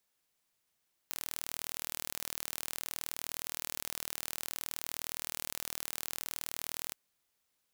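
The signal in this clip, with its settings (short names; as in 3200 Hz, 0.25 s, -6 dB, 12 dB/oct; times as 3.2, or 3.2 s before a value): pulse train 39.4/s, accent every 0, -10.5 dBFS 5.82 s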